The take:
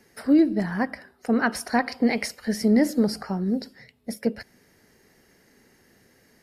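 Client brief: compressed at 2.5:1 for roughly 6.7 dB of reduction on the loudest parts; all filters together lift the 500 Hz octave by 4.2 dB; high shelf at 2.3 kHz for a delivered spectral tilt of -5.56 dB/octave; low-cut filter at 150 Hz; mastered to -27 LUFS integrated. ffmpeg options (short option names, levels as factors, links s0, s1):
-af "highpass=150,equalizer=f=500:t=o:g=5.5,highshelf=f=2300:g=-5.5,acompressor=threshold=0.0794:ratio=2.5,volume=1.12"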